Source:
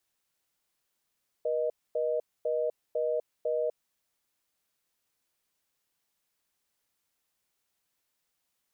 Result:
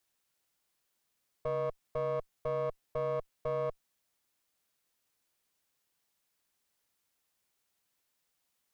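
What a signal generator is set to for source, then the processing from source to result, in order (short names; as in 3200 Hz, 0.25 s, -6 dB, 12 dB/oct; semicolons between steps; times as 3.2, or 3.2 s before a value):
call progress tone reorder tone, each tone -29 dBFS 2.28 s
one diode to ground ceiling -40 dBFS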